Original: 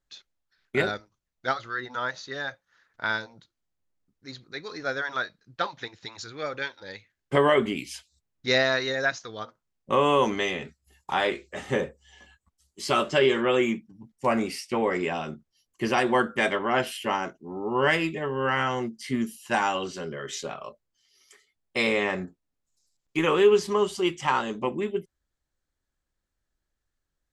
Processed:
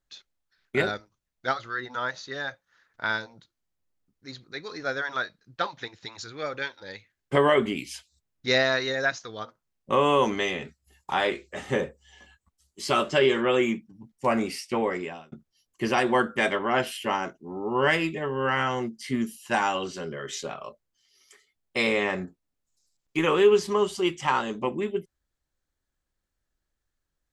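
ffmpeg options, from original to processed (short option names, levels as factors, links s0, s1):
-filter_complex "[0:a]asplit=2[s0][s1];[s0]atrim=end=15.32,asetpts=PTS-STARTPTS,afade=t=out:st=14.78:d=0.54[s2];[s1]atrim=start=15.32,asetpts=PTS-STARTPTS,afade=t=in:d=0.004:c=hsin[s3];[s2][s3]concat=n=2:v=0:a=1"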